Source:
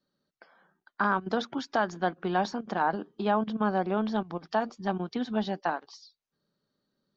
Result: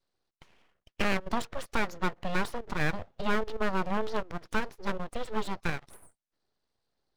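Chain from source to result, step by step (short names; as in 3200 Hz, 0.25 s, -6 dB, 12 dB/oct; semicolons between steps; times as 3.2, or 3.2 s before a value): full-wave rectifier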